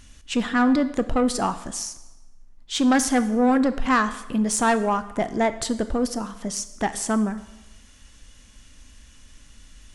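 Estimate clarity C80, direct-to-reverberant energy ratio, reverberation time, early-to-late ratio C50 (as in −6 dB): 16.0 dB, 11.5 dB, 1.1 s, 14.0 dB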